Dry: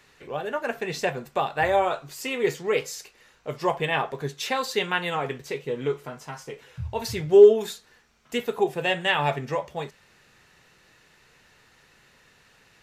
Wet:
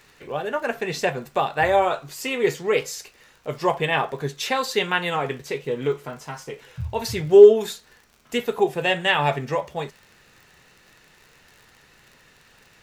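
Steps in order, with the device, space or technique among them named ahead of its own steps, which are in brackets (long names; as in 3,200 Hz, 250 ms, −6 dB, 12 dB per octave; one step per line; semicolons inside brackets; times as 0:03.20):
vinyl LP (surface crackle 44 per second −42 dBFS; pink noise bed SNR 44 dB)
level +3 dB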